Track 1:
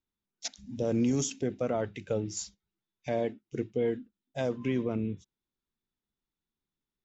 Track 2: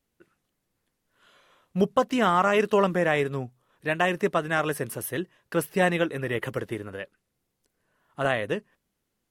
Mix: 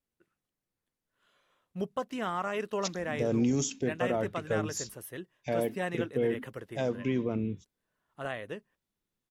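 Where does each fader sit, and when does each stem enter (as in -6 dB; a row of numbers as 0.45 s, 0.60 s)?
0.0 dB, -11.5 dB; 2.40 s, 0.00 s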